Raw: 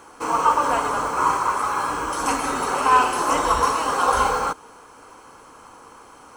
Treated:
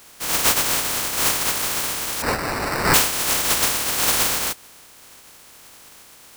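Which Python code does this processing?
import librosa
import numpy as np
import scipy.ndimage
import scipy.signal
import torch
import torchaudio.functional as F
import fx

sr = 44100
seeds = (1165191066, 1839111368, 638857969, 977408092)

y = fx.spec_flatten(x, sr, power=0.12)
y = fx.sample_hold(y, sr, seeds[0], rate_hz=3300.0, jitter_pct=0, at=(2.22, 2.94))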